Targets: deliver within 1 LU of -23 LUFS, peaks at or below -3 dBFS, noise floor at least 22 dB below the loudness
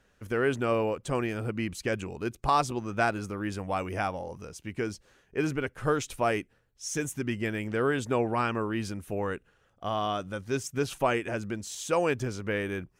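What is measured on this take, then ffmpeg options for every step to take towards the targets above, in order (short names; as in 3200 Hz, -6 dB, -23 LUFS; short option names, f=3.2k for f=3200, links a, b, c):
loudness -30.5 LUFS; peak -12.0 dBFS; loudness target -23.0 LUFS
-> -af "volume=7.5dB"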